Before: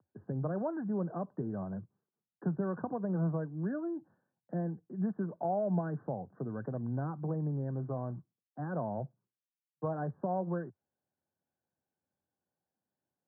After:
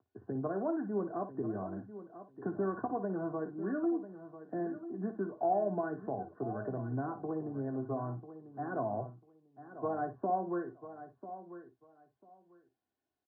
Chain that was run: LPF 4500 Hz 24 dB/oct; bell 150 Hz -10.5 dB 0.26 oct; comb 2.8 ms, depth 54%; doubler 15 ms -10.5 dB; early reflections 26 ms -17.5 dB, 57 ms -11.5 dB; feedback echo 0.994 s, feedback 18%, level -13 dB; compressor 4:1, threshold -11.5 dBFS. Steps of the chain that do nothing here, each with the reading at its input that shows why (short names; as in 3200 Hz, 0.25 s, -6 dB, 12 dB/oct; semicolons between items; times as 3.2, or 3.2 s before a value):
LPF 4500 Hz: input band ends at 1500 Hz; compressor, threshold -11.5 dBFS: input peak -19.5 dBFS